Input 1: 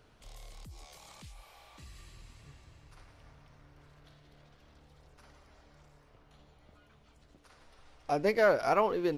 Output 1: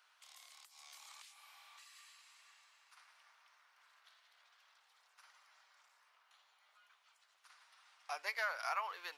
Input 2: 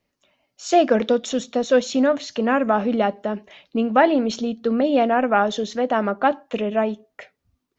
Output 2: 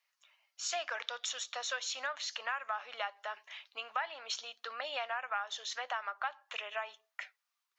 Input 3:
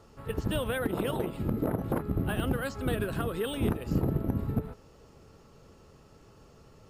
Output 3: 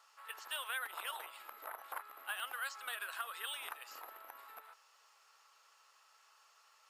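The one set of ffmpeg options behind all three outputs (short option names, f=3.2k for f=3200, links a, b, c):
-af "highpass=f=1k:w=0.5412,highpass=f=1k:w=1.3066,acompressor=threshold=-33dB:ratio=4,volume=-1.5dB"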